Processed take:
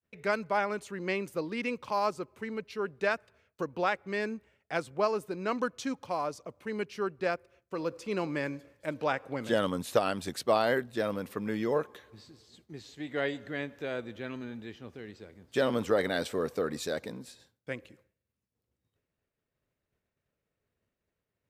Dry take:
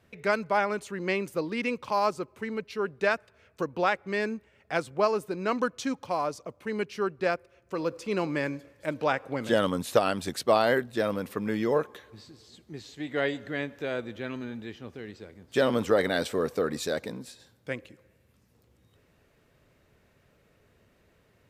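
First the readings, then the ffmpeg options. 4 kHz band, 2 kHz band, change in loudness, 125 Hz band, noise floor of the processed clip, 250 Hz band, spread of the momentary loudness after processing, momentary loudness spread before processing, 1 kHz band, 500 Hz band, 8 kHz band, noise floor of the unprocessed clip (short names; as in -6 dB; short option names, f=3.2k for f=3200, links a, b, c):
-3.5 dB, -3.5 dB, -3.5 dB, -3.5 dB, under -85 dBFS, -3.5 dB, 13 LU, 13 LU, -3.5 dB, -3.5 dB, -3.5 dB, -65 dBFS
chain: -af "agate=range=-33dB:threshold=-52dB:ratio=3:detection=peak,volume=-3.5dB"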